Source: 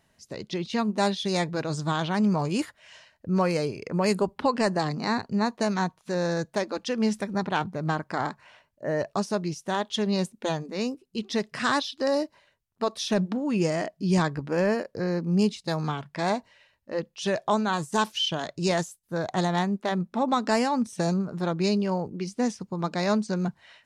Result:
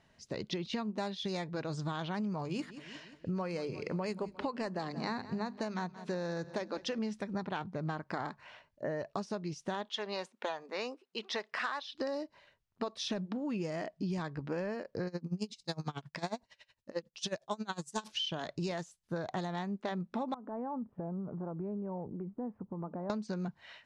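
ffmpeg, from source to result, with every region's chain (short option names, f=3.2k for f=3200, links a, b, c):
-filter_complex "[0:a]asettb=1/sr,asplit=3[a][b][c];[a]atrim=end=2.424[d];[b]atrim=start=2.42:end=6.99,asetpts=PTS-STARTPTS,afade=t=in:d=0.004:c=qsin,afade=t=out:st=4.566:d=0.004:c=qsin,bandreject=f=50:t=h:w=6,bandreject=f=100:t=h:w=6,bandreject=f=150:t=h:w=6,bandreject=f=200:t=h:w=6,bandreject=f=250:t=h:w=6,aecho=1:1:177|354|531|708:0.1|0.054|0.0292|0.0157,atrim=end_sample=201537[e];[c]atrim=start=6.986[f];[d][e]acrossfade=d=0.004:c1=hsin:c2=qsin[g];[g][f]acrossfade=d=0.004:c1=qsin:c2=hsin,asettb=1/sr,asplit=3[h][i][j];[h]atrim=end=9.894[k];[i]atrim=start=9.89:end=11.95,asetpts=PTS-STARTPTS,afade=t=in:d=0.004:c=qsin,afade=t=out:st=2.056:d=0.004:c=qsin,highpass=810,highshelf=f=2.7k:g=-12,acontrast=76[l];[j]atrim=start=11.946[m];[k][l]acrossfade=d=0.004:c1=hsin:c2=qsin[n];[n][m]acrossfade=d=0.004:c1=qsin:c2=hsin,asettb=1/sr,asplit=3[o][p][q];[o]atrim=end=15.074[r];[p]atrim=start=15.07:end=18.08,asetpts=PTS-STARTPTS,afade=t=in:d=0.004:c=qsin,afade=t=out:st=3.006:d=0.004:c=qsin,bass=f=250:g=2,treble=f=4k:g=12,aeval=exprs='val(0)*pow(10,-26*(0.5-0.5*cos(2*PI*11*n/s))/20)':c=same[s];[q]atrim=start=18.076[t];[r][s]acrossfade=d=0.004:c1=hsin:c2=qsin[u];[u][t]acrossfade=d=0.004:c1=qsin:c2=hsin,asettb=1/sr,asplit=3[v][w][x];[v]atrim=end=20.344[y];[w]atrim=start=20.34:end=23.1,asetpts=PTS-STARTPTS,afade=t=in:d=0.004:c=qsin,afade=t=out:st=2.756:d=0.004:c=qsin,lowpass=f=1.1k:w=0.5412,lowpass=f=1.1k:w=1.3066,acompressor=threshold=-39dB:ratio=3:attack=3.2:release=140:knee=1:detection=peak[z];[x]atrim=start=23.096[aa];[y][z]acrossfade=d=0.004:c1=hsin:c2=qsin[ab];[ab][aa]acrossfade=d=0.004:c1=qsin:c2=hsin,lowpass=5.5k,acompressor=threshold=-33dB:ratio=10"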